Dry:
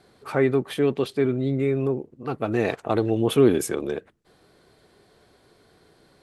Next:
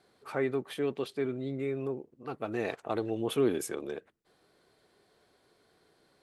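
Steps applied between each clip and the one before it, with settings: low shelf 190 Hz -8.5 dB; gain -8 dB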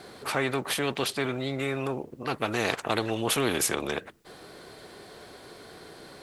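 spectral compressor 2:1; gain +8.5 dB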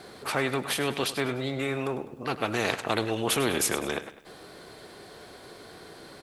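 feedback echo 0.101 s, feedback 43%, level -13.5 dB

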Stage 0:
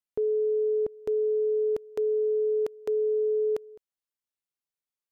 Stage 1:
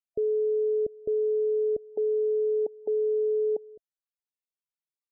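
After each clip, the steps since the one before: loudest bins only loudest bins 32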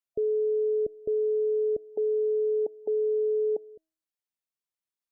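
resonator 320 Hz, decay 0.52 s, harmonics all, mix 40%; gain +4 dB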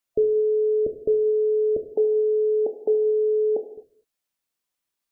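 non-linear reverb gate 0.28 s falling, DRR 6 dB; gain +8.5 dB

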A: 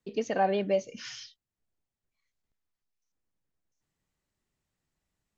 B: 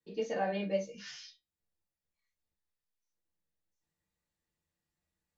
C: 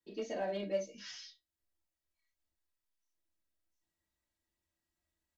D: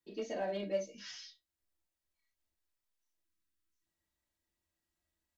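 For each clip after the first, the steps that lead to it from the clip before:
resonator 66 Hz, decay 0.2 s, harmonics odd, mix 60%; non-linear reverb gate 80 ms falling, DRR -6.5 dB; gain -7 dB
comb 3.1 ms, depth 63%; dynamic EQ 1300 Hz, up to -6 dB, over -50 dBFS, Q 1.4; in parallel at -8 dB: hard clip -33 dBFS, distortion -8 dB; on the sum: gain -5 dB
spectral delete 3.25–3.86, 420–990 Hz

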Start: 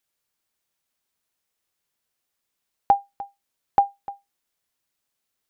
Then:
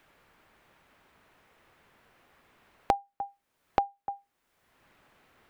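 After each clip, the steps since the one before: three-band squash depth 100%; gain -4 dB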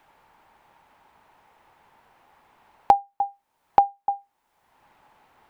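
bell 870 Hz +13.5 dB 0.51 oct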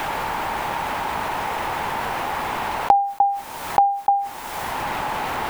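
fast leveller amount 70%

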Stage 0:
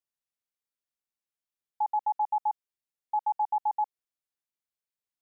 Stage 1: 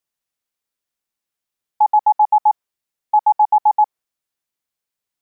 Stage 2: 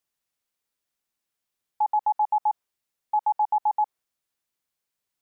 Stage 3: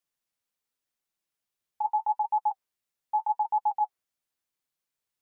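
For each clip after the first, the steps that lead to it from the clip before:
dynamic EQ 930 Hz, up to +6 dB, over -41 dBFS, Q 0.83; gain +8.5 dB
limiter -17.5 dBFS, peak gain reduction 9.5 dB
flange 0.83 Hz, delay 5.1 ms, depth 8.8 ms, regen -30%

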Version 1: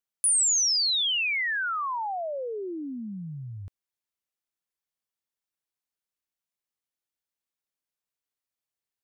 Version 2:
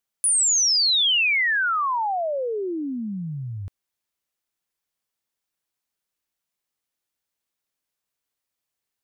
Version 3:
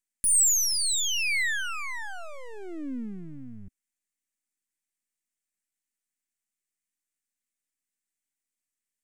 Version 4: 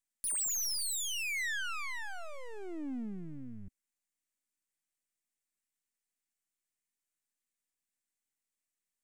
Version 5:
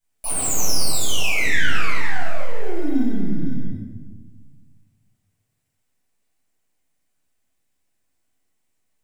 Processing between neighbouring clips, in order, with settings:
limiter -23 dBFS, peak gain reduction 4.5 dB; gain +6.5 dB
half-wave rectifier; ten-band EQ 125 Hz -8 dB, 250 Hz +11 dB, 500 Hz -8 dB, 1000 Hz -9 dB, 2000 Hz +9 dB, 4000 Hz -5 dB, 8000 Hz +12 dB; gain -6 dB
soft clip -30 dBFS, distortion -6 dB; gain -2.5 dB
in parallel at -12 dB: sample-and-hold 25×; on the sum: reverb RT60 1.3 s, pre-delay 8 ms, DRR -10.5 dB

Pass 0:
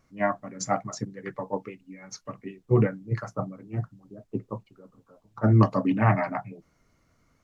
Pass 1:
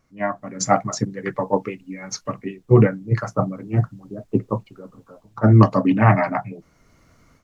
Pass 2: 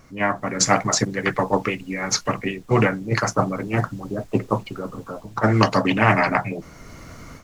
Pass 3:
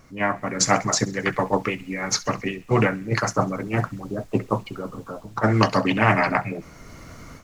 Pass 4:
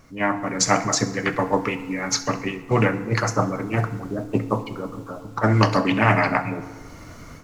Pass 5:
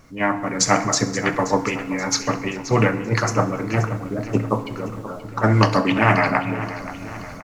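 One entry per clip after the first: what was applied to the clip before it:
AGC gain up to 11.5 dB
spectral compressor 2:1
thin delay 66 ms, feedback 56%, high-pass 1800 Hz, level -19.5 dB; gain -1.5 dB
FDN reverb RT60 1.4 s, low-frequency decay 1.25×, high-frequency decay 0.55×, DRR 10 dB
feedback echo 0.528 s, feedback 51%, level -14 dB; gain +1.5 dB

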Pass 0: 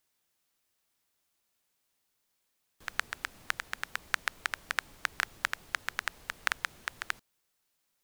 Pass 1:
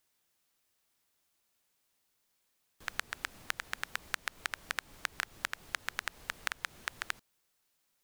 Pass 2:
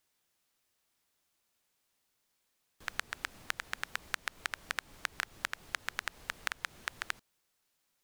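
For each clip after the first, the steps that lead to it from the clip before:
compressor 6:1, threshold -31 dBFS, peak gain reduction 9 dB; gain +1 dB
high shelf 11000 Hz -3.5 dB

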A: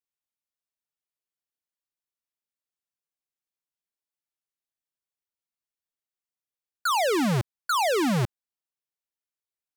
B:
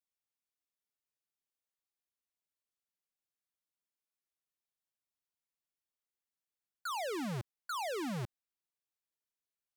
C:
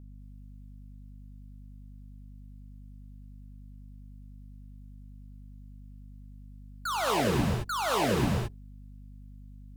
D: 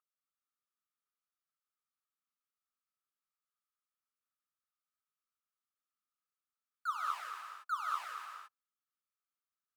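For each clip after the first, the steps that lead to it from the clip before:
limiter -33 dBFS, peak gain reduction 10 dB; gain -4 dB
octaver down 1 oct, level -3 dB; non-linear reverb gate 0.24 s rising, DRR -2.5 dB; hum 50 Hz, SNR 12 dB; gain +6 dB
ladder high-pass 1200 Hz, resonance 85%; gain -5.5 dB

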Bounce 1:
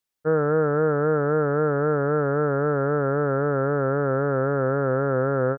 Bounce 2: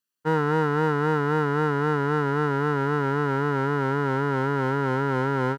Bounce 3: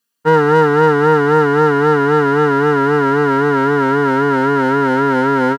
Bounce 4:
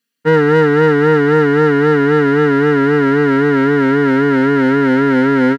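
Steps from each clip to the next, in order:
minimum comb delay 0.69 ms; HPF 140 Hz
comb 4.3 ms, depth 82%; gain +8.5 dB
graphic EQ 125/250/500/1000/2000/4000 Hz +5/+9/+4/-5/+10/+4 dB; gain -5 dB

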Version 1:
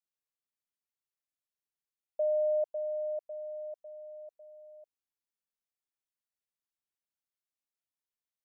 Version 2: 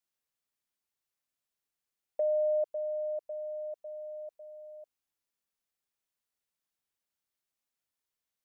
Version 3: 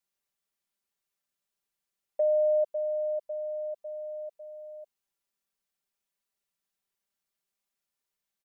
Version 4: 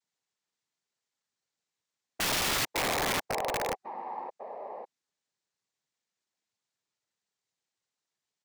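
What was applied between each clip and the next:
dynamic EQ 720 Hz, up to -7 dB, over -45 dBFS, Q 2.4; gain +4.5 dB
comb 5.1 ms
noise vocoder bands 6; spectral gain 3.74–4.29, 370–750 Hz -12 dB; wrapped overs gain 26.5 dB; gain +2.5 dB

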